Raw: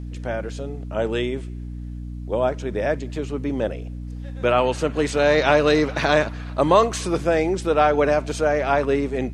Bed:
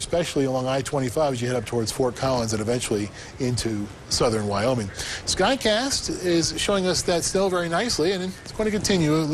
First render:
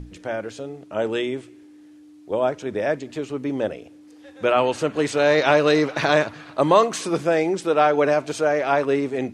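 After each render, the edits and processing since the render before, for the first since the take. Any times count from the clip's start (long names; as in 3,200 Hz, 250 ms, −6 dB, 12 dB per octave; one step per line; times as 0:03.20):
mains-hum notches 60/120/180/240 Hz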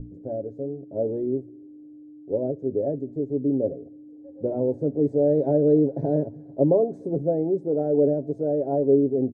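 inverse Chebyshev low-pass filter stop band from 1,100 Hz, stop band 40 dB
comb filter 7.3 ms, depth 50%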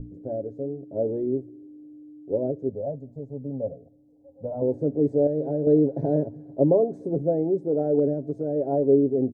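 0:02.69–0:04.62: phaser with its sweep stopped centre 840 Hz, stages 4
0:05.27–0:05.67: tuned comb filter 76 Hz, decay 0.97 s
0:07.99–0:08.56: dynamic equaliser 610 Hz, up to −5 dB, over −30 dBFS, Q 0.91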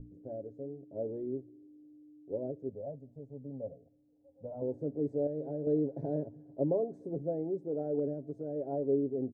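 level −11 dB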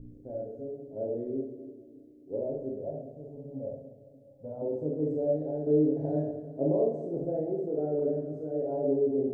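echo with a time of its own for lows and highs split 360 Hz, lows 293 ms, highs 200 ms, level −13.5 dB
four-comb reverb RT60 0.56 s, combs from 26 ms, DRR −2 dB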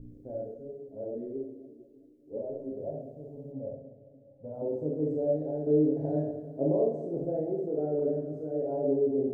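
0:00.54–0:02.77: string-ensemble chorus
0:03.52–0:04.54: high-frequency loss of the air 370 metres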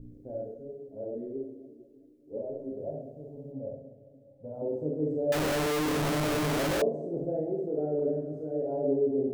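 0:05.32–0:06.82: sign of each sample alone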